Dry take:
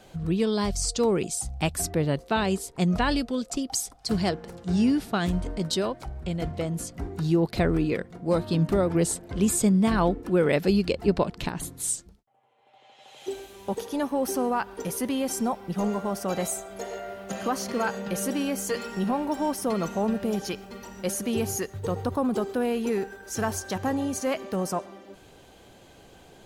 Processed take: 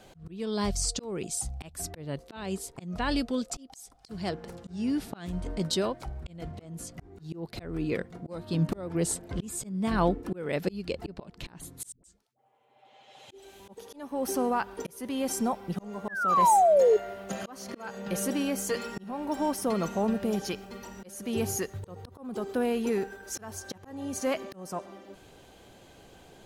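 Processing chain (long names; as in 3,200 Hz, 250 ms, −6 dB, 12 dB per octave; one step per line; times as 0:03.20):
0:11.92–0:13.60: all-pass dispersion highs, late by 117 ms, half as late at 430 Hz
0:16.08–0:16.97: sound drawn into the spectrogram fall 410–1,800 Hz −18 dBFS
volume swells 393 ms
level −1.5 dB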